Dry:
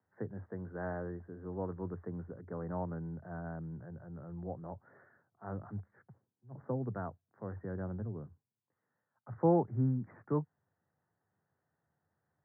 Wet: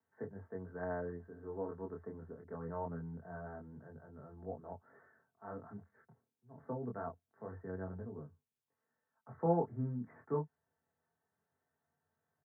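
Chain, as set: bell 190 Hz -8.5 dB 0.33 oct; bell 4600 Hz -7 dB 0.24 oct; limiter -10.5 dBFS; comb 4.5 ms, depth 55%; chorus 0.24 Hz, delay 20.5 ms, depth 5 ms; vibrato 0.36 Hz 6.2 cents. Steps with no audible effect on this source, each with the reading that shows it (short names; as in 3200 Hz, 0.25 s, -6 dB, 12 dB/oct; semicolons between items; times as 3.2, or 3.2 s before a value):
bell 4600 Hz: input band ends at 1500 Hz; limiter -10.5 dBFS: input peak -17.5 dBFS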